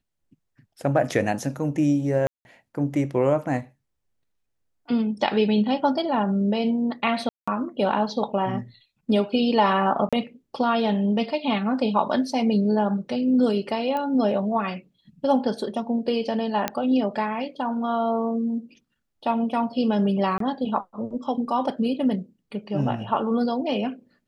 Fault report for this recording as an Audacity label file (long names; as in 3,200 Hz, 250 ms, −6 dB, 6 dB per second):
2.270000	2.450000	drop-out 181 ms
7.290000	7.470000	drop-out 185 ms
10.090000	10.130000	drop-out 36 ms
13.970000	13.970000	click −17 dBFS
16.680000	16.680000	click −8 dBFS
20.380000	20.400000	drop-out 23 ms